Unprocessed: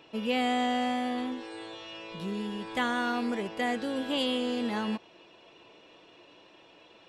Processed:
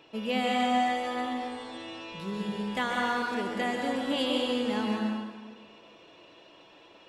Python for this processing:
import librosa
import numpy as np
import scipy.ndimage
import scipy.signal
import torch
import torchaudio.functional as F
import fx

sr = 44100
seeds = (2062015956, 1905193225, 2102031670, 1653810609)

y = fx.hum_notches(x, sr, base_hz=60, count=4)
y = fx.rev_plate(y, sr, seeds[0], rt60_s=1.4, hf_ratio=0.75, predelay_ms=120, drr_db=0.5)
y = y * 10.0 ** (-1.0 / 20.0)